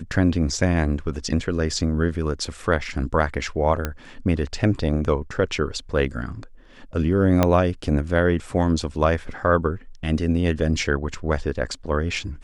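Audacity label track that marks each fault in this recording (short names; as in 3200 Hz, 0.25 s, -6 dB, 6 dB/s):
3.850000	3.850000	pop -10 dBFS
7.430000	7.430000	pop -4 dBFS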